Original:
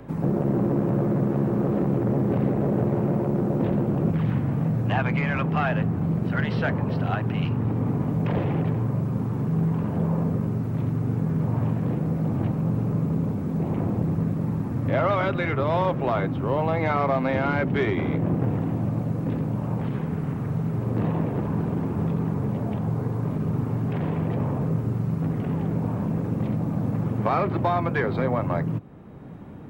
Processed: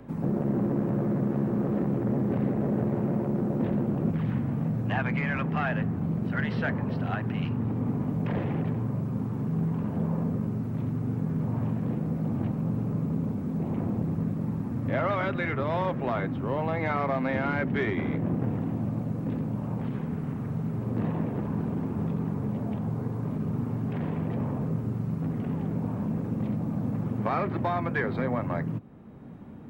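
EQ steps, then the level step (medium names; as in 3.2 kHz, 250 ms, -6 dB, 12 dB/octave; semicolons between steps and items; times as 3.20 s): dynamic bell 1.8 kHz, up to +5 dB, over -44 dBFS, Q 2.5; peaking EQ 230 Hz +6.5 dB 0.31 oct; -5.5 dB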